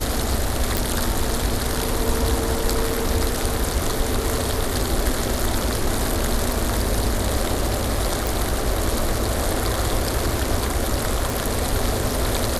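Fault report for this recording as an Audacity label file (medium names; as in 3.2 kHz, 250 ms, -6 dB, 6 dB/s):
0.770000	0.770000	pop
2.900000	2.900000	dropout 3.4 ms
8.270000	8.270000	pop
11.300000	11.300000	pop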